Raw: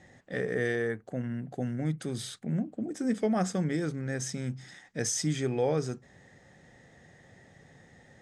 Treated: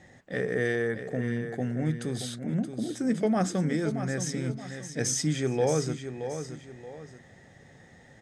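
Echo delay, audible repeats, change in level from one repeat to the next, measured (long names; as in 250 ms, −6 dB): 625 ms, 2, −9.0 dB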